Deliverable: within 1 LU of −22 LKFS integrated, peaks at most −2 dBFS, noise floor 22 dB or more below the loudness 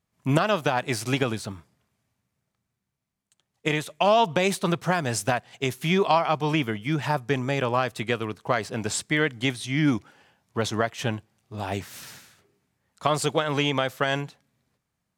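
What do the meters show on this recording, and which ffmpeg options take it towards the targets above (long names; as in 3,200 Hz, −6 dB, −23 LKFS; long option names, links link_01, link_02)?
integrated loudness −25.5 LKFS; sample peak −3.0 dBFS; target loudness −22.0 LKFS
→ -af "volume=3.5dB,alimiter=limit=-2dB:level=0:latency=1"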